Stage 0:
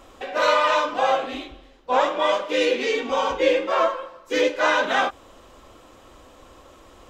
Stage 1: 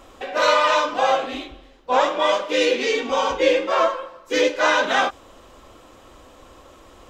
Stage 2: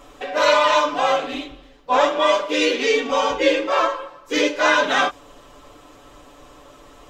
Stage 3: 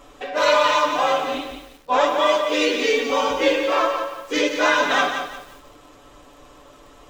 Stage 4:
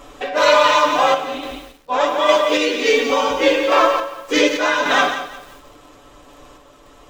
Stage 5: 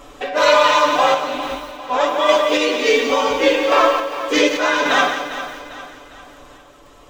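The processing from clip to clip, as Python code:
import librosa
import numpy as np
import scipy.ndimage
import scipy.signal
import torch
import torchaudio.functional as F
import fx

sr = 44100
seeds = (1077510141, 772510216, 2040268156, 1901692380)

y1 = fx.dynamic_eq(x, sr, hz=5600.0, q=1.1, threshold_db=-41.0, ratio=4.0, max_db=4)
y1 = F.gain(torch.from_numpy(y1), 1.5).numpy()
y2 = y1 + 0.65 * np.pad(y1, (int(6.9 * sr / 1000.0), 0))[:len(y1)]
y3 = fx.echo_crushed(y2, sr, ms=175, feedback_pct=35, bits=7, wet_db=-7.0)
y3 = F.gain(torch.from_numpy(y3), -1.5).numpy()
y4 = fx.tremolo_random(y3, sr, seeds[0], hz=3.5, depth_pct=55)
y4 = F.gain(torch.from_numpy(y4), 6.0).numpy()
y5 = fx.echo_feedback(y4, sr, ms=401, feedback_pct=44, wet_db=-12.5)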